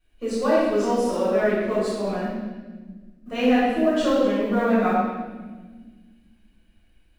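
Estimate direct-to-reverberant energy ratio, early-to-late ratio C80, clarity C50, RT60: −13.5 dB, 0.5 dB, −2.5 dB, 1.4 s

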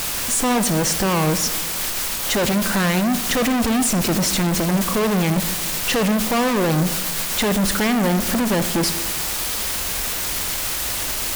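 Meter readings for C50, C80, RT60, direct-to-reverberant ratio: 11.5 dB, 13.5 dB, 1.2 s, 11.0 dB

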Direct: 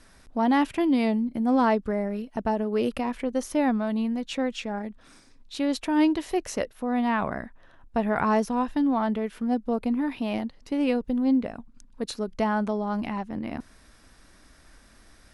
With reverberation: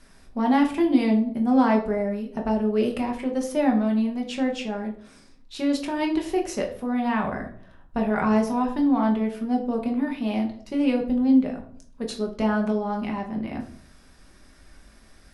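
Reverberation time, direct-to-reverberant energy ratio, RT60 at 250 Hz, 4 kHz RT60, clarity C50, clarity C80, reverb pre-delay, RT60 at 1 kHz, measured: 0.55 s, 1.0 dB, 0.75 s, 0.35 s, 10.0 dB, 14.0 dB, 5 ms, 0.50 s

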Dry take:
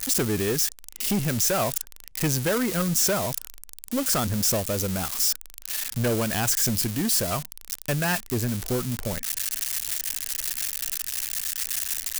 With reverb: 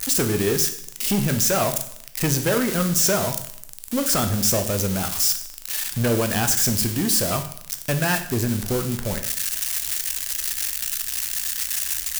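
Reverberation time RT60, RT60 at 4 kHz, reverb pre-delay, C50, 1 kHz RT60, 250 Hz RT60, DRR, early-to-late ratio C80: 0.70 s, 0.65 s, 13 ms, 10.5 dB, 0.65 s, 0.75 s, 6.5 dB, 13.5 dB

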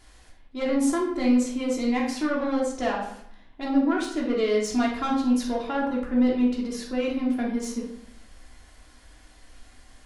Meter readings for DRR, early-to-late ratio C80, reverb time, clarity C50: −4.0 dB, 8.0 dB, 0.70 s, 4.0 dB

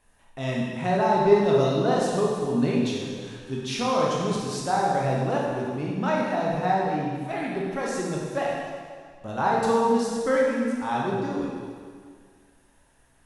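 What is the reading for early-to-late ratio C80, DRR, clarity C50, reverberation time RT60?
1.0 dB, −4.0 dB, −1.0 dB, 1.9 s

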